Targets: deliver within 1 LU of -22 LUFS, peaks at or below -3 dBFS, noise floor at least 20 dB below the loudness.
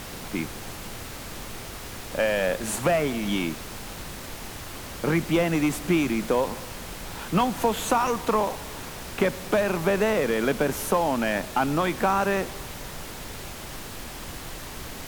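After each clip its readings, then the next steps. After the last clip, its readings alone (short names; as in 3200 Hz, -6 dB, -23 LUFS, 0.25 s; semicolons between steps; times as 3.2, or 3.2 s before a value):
noise floor -38 dBFS; noise floor target -47 dBFS; loudness -26.5 LUFS; peak -9.0 dBFS; loudness target -22.0 LUFS
-> noise print and reduce 9 dB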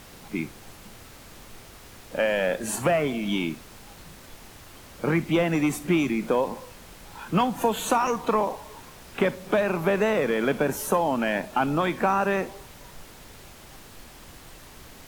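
noise floor -47 dBFS; loudness -25.5 LUFS; peak -9.0 dBFS; loudness target -22.0 LUFS
-> gain +3.5 dB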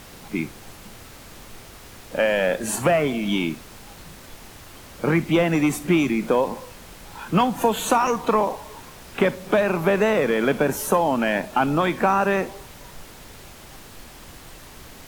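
loudness -22.0 LUFS; peak -5.5 dBFS; noise floor -44 dBFS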